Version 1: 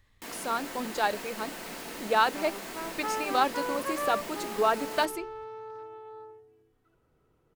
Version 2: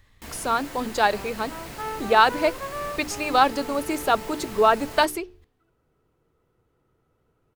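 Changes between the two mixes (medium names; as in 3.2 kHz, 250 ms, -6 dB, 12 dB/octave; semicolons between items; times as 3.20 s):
speech +7.0 dB; first sound: remove steep high-pass 180 Hz 36 dB/octave; second sound: entry -1.25 s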